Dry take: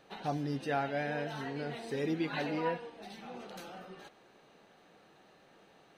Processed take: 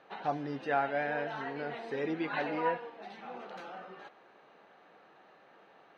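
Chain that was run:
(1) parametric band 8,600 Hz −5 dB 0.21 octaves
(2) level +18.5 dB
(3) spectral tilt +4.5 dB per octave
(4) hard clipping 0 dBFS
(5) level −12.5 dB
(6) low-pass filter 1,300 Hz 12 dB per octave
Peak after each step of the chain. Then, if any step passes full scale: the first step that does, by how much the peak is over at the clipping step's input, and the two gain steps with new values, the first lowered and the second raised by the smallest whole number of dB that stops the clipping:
−21.0, −2.5, −1.5, −1.5, −14.0, −18.0 dBFS
no step passes full scale

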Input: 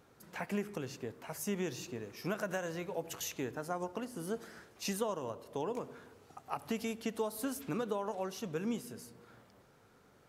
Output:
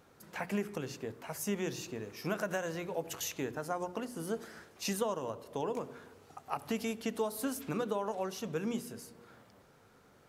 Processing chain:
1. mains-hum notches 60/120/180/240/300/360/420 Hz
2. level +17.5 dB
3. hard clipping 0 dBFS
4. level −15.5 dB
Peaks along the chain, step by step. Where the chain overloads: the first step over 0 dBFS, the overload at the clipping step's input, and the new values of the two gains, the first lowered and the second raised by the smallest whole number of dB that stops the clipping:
−21.0, −3.5, −3.5, −19.0 dBFS
no step passes full scale

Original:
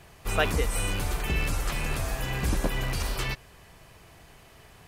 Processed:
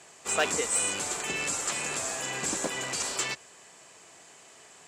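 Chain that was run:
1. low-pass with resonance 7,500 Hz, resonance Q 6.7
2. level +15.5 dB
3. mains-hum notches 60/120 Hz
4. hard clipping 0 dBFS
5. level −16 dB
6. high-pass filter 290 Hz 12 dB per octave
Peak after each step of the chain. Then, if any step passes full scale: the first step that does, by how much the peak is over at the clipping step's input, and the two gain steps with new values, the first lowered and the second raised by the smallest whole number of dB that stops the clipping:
−8.5, +7.0, +7.0, 0.0, −16.0, −13.0 dBFS
step 2, 7.0 dB
step 2 +8.5 dB, step 5 −9 dB

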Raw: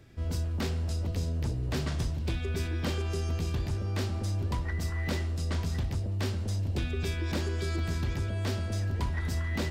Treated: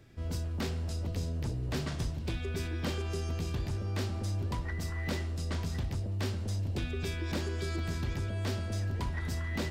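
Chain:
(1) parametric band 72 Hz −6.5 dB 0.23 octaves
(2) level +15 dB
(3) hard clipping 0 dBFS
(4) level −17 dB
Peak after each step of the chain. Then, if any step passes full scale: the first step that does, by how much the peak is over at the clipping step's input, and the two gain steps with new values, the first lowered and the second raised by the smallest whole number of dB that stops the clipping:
−20.0, −5.0, −5.0, −22.0 dBFS
no step passes full scale

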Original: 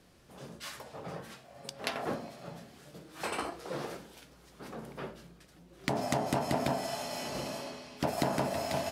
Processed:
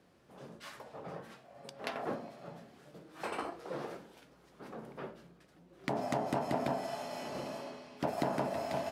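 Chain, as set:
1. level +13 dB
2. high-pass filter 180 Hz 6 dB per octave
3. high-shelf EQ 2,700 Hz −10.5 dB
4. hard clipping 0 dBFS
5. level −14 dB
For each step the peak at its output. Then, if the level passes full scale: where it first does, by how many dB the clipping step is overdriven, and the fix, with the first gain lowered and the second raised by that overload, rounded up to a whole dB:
−0.5, −0.5, −4.0, −4.0, −18.0 dBFS
no step passes full scale

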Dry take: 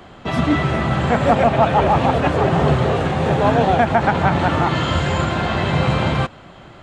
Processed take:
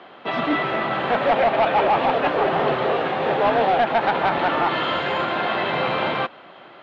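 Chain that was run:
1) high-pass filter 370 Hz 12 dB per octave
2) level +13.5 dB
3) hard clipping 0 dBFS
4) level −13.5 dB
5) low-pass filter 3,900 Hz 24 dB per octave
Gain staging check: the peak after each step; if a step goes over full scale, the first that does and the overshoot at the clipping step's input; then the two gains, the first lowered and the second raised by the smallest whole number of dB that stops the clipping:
−4.0, +9.5, 0.0, −13.5, −12.0 dBFS
step 2, 9.5 dB
step 2 +3.5 dB, step 4 −3.5 dB

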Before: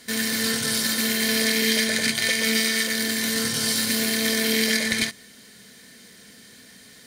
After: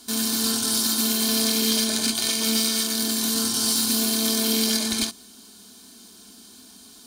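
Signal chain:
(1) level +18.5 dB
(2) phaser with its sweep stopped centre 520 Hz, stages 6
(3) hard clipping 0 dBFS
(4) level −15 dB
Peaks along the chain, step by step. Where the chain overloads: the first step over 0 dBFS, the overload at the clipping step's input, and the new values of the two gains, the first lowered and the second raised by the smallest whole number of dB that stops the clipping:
+11.0, +7.0, 0.0, −15.0 dBFS
step 1, 7.0 dB
step 1 +11.5 dB, step 4 −8 dB

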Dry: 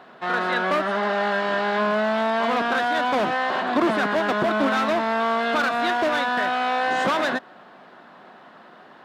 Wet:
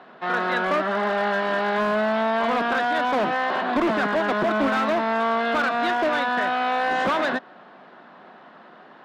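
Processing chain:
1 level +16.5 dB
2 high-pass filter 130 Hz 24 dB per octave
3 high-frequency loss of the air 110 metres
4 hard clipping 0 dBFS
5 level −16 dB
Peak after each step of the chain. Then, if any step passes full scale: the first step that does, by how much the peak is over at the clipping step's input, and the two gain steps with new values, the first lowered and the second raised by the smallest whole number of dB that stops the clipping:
+6.5, +6.5, +6.0, 0.0, −16.0 dBFS
step 1, 6.0 dB
step 1 +10.5 dB, step 5 −10 dB

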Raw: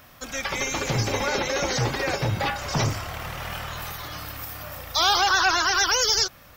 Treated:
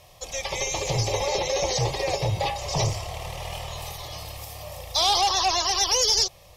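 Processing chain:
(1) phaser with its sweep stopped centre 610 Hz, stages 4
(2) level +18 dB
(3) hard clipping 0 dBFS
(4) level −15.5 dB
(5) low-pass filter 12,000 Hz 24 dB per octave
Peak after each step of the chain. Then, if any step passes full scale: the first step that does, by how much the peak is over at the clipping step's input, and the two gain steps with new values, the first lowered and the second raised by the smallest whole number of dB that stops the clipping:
−11.5, +6.5, 0.0, −15.5, −13.5 dBFS
step 2, 6.5 dB
step 2 +11 dB, step 4 −8.5 dB

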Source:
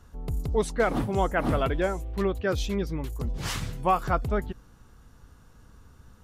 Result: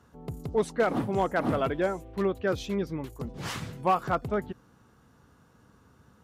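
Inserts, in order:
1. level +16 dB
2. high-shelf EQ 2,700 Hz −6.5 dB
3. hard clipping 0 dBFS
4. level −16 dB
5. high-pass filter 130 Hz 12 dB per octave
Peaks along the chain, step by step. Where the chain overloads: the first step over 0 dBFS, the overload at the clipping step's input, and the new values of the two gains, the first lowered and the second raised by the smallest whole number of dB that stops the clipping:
+5.5, +4.5, 0.0, −16.0, −13.5 dBFS
step 1, 4.5 dB
step 1 +11 dB, step 4 −11 dB

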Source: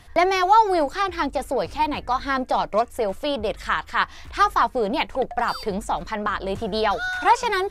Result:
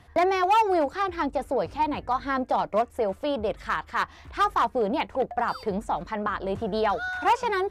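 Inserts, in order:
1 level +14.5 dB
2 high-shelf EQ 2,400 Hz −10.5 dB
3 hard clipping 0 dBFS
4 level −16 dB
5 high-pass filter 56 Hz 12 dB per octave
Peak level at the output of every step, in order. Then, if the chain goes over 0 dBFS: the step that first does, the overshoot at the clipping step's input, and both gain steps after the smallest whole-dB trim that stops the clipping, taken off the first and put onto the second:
+8.5, +7.0, 0.0, −16.0, −14.5 dBFS
step 1, 7.0 dB
step 1 +7.5 dB, step 4 −9 dB

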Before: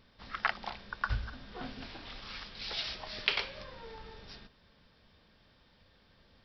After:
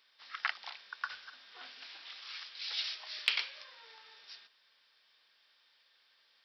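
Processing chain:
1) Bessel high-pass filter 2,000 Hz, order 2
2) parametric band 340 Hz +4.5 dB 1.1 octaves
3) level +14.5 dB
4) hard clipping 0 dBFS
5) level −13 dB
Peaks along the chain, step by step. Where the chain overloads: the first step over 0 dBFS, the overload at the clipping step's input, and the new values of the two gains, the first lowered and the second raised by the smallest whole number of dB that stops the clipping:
−10.5, −10.5, +4.0, 0.0, −13.0 dBFS
step 3, 4.0 dB
step 3 +10.5 dB, step 5 −9 dB

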